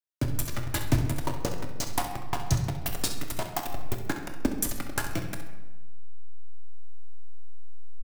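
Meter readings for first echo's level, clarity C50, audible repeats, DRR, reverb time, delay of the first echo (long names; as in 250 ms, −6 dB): −11.5 dB, 6.0 dB, 1, 3.0 dB, 1.1 s, 66 ms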